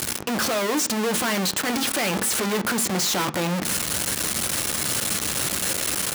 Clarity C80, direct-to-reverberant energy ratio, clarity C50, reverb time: 24.5 dB, 9.5 dB, 20.0 dB, 0.45 s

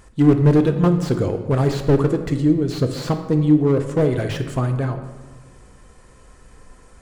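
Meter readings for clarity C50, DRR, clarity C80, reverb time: 9.0 dB, 6.5 dB, 11.0 dB, 1.3 s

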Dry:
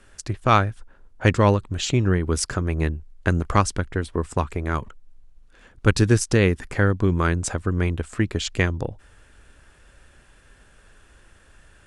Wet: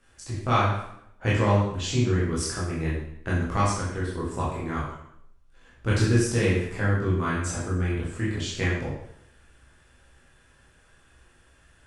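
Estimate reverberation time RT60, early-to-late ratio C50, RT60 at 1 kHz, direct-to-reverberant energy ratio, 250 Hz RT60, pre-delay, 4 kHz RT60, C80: 0.70 s, 1.5 dB, 0.70 s, −7.5 dB, 0.80 s, 9 ms, 0.65 s, 4.5 dB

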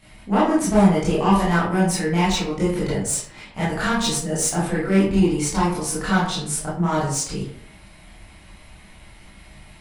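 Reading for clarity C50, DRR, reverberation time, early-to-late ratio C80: 2.0 dB, −10.0 dB, 0.60 s, 7.0 dB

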